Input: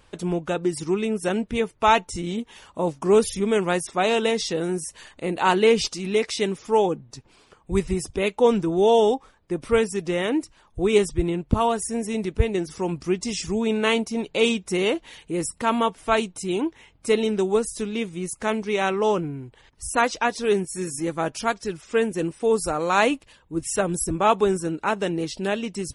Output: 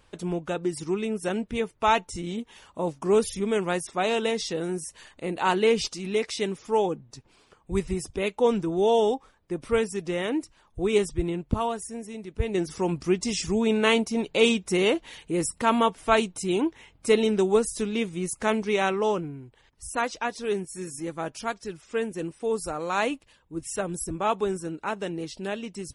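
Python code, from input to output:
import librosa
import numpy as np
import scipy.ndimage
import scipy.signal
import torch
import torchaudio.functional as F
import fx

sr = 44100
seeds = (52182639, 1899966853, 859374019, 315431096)

y = fx.gain(x, sr, db=fx.line((11.44, -4.0), (12.25, -12.5), (12.6, 0.0), (18.69, 0.0), (19.41, -6.5)))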